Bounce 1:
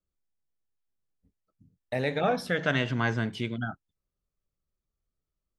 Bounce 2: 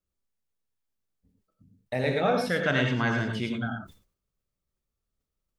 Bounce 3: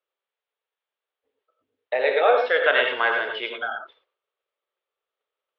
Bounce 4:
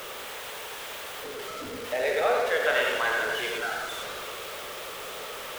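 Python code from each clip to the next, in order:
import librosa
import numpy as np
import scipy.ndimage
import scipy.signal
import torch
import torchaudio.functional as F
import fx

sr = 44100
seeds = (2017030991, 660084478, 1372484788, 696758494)

y1 = fx.rev_gated(x, sr, seeds[0], gate_ms=130, shape='rising', drr_db=3.0)
y1 = fx.sustainer(y1, sr, db_per_s=130.0)
y2 = scipy.signal.sosfilt(scipy.signal.ellip(3, 1.0, 40, [450.0, 3400.0], 'bandpass', fs=sr, output='sos'), y1)
y2 = y2 * librosa.db_to_amplitude(8.0)
y3 = y2 + 0.5 * 10.0 ** (-23.5 / 20.0) * np.sign(y2)
y3 = fx.doubler(y3, sr, ms=44.0, db=-12.0)
y3 = fx.echo_warbled(y3, sr, ms=84, feedback_pct=77, rate_hz=2.8, cents=128, wet_db=-9.5)
y3 = y3 * librosa.db_to_amplitude(-8.0)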